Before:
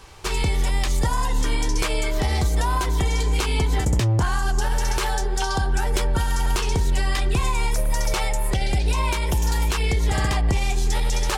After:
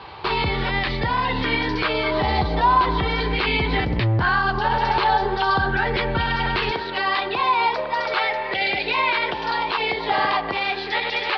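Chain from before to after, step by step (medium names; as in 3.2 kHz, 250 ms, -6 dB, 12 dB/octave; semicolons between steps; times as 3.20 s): high-pass 110 Hz 12 dB/octave, from 6.71 s 400 Hz; peak limiter -19.5 dBFS, peak gain reduction 8.5 dB; steep low-pass 4.6 kHz 72 dB/octave; sweeping bell 0.4 Hz 870–2300 Hz +7 dB; trim +6.5 dB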